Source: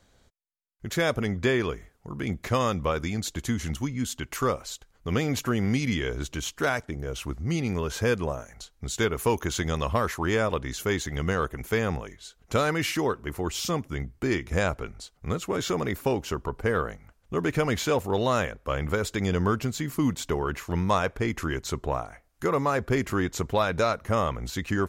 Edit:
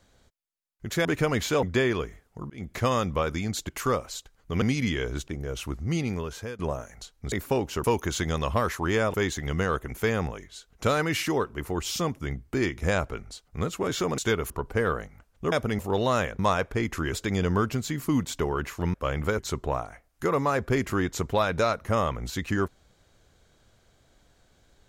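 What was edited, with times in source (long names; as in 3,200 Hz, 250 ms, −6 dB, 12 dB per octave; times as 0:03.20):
0:01.05–0:01.32: swap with 0:17.41–0:17.99
0:02.19–0:02.45: fade in
0:03.38–0:04.25: remove
0:05.18–0:05.67: remove
0:06.33–0:06.87: remove
0:07.59–0:08.18: fade out, to −20 dB
0:08.91–0:09.23: swap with 0:15.87–0:16.39
0:10.53–0:10.83: remove
0:18.59–0:19.03: swap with 0:20.84–0:21.58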